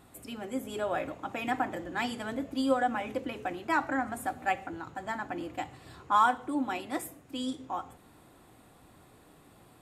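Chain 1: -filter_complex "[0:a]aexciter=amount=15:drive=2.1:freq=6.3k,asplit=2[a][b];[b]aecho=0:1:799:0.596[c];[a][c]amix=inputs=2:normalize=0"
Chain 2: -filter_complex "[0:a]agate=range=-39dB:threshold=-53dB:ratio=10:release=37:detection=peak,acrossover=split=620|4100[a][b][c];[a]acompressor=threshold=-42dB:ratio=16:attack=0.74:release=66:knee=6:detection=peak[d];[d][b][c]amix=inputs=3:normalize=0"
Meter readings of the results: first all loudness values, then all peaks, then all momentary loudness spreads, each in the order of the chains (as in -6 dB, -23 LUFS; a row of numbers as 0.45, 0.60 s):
-28.0, -34.5 LUFS; -6.5, -13.5 dBFS; 16, 13 LU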